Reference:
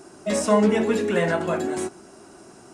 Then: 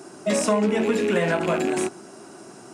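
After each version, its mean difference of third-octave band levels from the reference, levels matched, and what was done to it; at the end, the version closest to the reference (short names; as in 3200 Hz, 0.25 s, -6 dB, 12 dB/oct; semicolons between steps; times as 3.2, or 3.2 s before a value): 3.0 dB: rattling part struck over -32 dBFS, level -24 dBFS; HPF 110 Hz 24 dB/oct; compressor, threshold -21 dBFS, peak gain reduction 8 dB; gain +3.5 dB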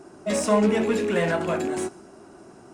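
1.5 dB: rattling part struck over -30 dBFS, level -27 dBFS; in parallel at -8 dB: overloaded stage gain 27 dB; on the sum: mismatched tape noise reduction decoder only; gain -2.5 dB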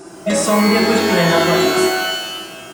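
8.0 dB: comb 5.9 ms, depth 37%; in parallel at 0 dB: negative-ratio compressor -23 dBFS; on the sum: shimmer reverb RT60 1.1 s, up +12 st, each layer -2 dB, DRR 4 dB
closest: second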